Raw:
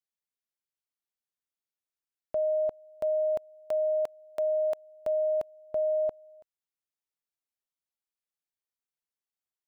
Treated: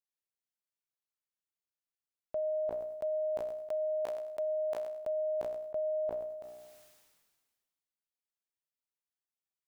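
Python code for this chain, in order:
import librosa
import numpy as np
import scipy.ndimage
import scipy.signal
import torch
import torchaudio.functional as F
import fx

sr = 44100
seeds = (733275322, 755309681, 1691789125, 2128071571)

y = fx.comb_fb(x, sr, f0_hz=61.0, decay_s=0.99, harmonics='all', damping=0.0, mix_pct=40)
y = fx.sustainer(y, sr, db_per_s=36.0)
y = F.gain(torch.from_numpy(y), -2.0).numpy()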